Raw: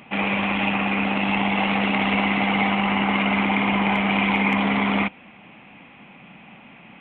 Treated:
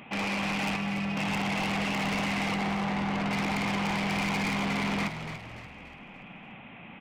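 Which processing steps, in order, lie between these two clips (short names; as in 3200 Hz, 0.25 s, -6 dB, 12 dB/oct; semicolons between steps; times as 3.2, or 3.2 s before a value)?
0.76–1.17 metallic resonator 100 Hz, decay 0.21 s, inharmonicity 0.008; 2.54–3.31 LPF 1300 Hz 6 dB/oct; soft clip -26 dBFS, distortion -8 dB; frequency-shifting echo 0.289 s, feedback 44%, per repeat -43 Hz, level -9 dB; gain -1.5 dB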